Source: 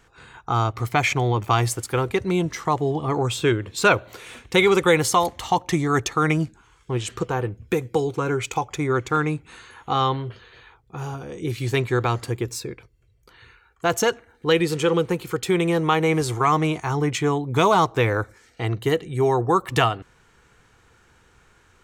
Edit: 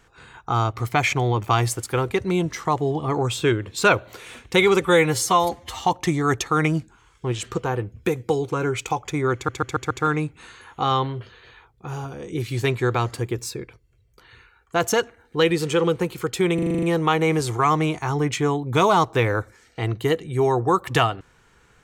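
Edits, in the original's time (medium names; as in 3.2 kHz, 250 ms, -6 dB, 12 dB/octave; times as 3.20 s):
4.81–5.50 s: stretch 1.5×
9.00 s: stutter 0.14 s, 5 plays
15.64 s: stutter 0.04 s, 8 plays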